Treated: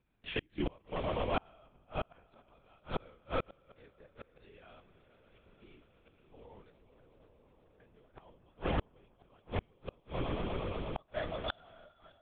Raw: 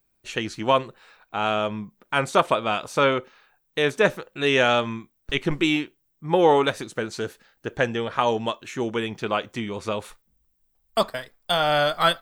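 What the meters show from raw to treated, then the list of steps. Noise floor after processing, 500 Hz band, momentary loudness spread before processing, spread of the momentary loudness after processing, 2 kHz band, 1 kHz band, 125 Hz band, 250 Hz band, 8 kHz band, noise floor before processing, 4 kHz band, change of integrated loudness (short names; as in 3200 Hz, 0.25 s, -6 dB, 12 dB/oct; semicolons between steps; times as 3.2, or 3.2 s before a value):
-69 dBFS, -18.0 dB, 13 LU, 22 LU, -20.5 dB, -19.0 dB, -10.0 dB, -16.0 dB, under -40 dB, -70 dBFS, -20.5 dB, -15.5 dB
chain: notches 60/120/180 Hz; harmonic-percussive split percussive -9 dB; high shelf 2800 Hz -2.5 dB; swelling echo 0.118 s, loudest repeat 5, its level -14 dB; LPC vocoder at 8 kHz whisper; flipped gate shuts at -22 dBFS, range -37 dB; gain +1 dB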